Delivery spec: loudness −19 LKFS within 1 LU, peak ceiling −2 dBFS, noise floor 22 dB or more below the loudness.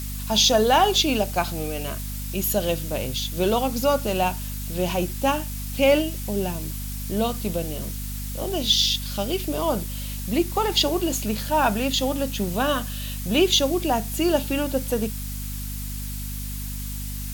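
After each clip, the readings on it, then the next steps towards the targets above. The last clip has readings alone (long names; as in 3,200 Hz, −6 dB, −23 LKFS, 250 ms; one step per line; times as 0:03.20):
mains hum 50 Hz; hum harmonics up to 250 Hz; level of the hum −29 dBFS; background noise floor −31 dBFS; target noise floor −46 dBFS; integrated loudness −23.5 LKFS; sample peak −6.5 dBFS; target loudness −19.0 LKFS
→ mains-hum notches 50/100/150/200/250 Hz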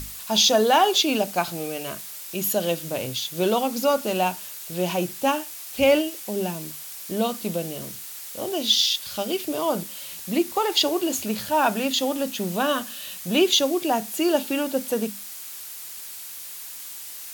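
mains hum none found; background noise floor −38 dBFS; target noise floor −46 dBFS
→ broadband denoise 8 dB, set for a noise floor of −38 dBFS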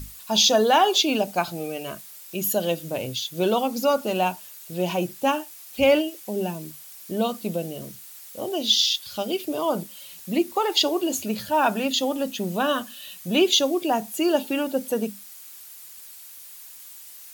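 background noise floor −44 dBFS; target noise floor −46 dBFS
→ broadband denoise 6 dB, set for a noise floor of −44 dBFS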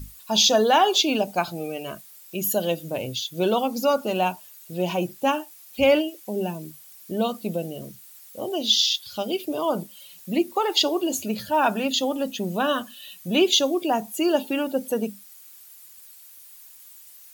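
background noise floor −48 dBFS; integrated loudness −23.5 LKFS; sample peak −7.0 dBFS; target loudness −19.0 LKFS
→ level +4.5 dB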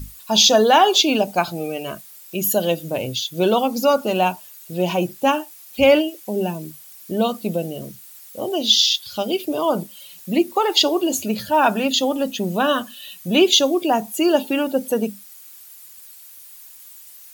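integrated loudness −19.0 LKFS; sample peak −2.5 dBFS; background noise floor −43 dBFS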